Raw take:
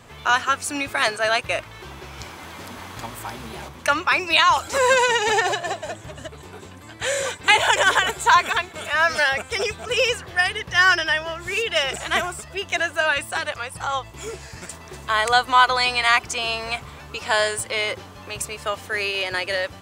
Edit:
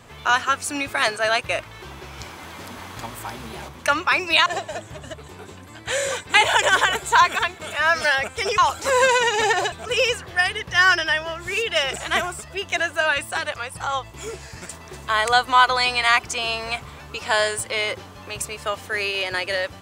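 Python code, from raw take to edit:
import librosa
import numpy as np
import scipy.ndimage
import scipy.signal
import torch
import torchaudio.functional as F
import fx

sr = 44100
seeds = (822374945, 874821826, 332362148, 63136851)

y = fx.edit(x, sr, fx.move(start_s=4.46, length_s=1.14, to_s=9.72), tone=tone)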